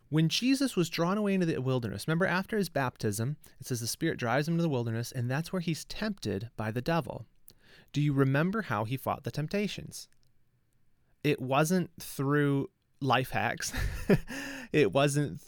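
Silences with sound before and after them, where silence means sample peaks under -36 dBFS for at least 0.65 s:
10.02–11.25 s

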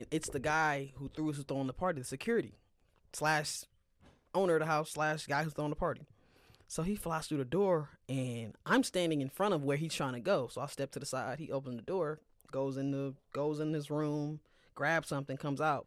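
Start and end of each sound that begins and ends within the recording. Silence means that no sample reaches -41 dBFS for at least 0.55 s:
3.14–3.61 s
4.35–5.96 s

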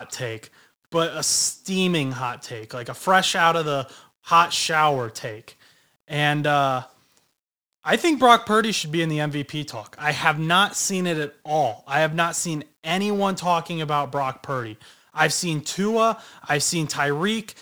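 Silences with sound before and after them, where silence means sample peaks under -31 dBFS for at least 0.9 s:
6.83–7.86 s

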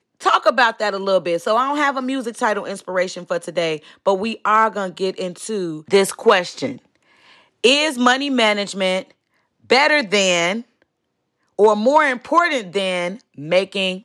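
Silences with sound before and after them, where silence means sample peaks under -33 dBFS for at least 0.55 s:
6.77–7.64 s
9.03–9.70 s
10.61–11.59 s

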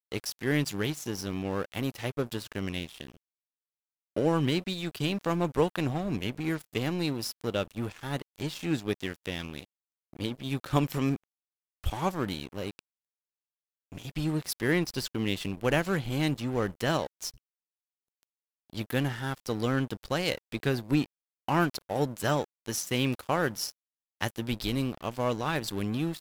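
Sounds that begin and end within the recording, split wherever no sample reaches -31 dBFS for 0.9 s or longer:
4.16–12.79 s
13.96–17.29 s

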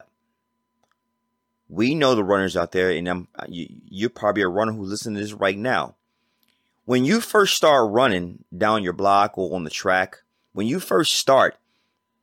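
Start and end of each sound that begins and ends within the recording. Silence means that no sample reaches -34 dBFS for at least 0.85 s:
1.72–5.90 s

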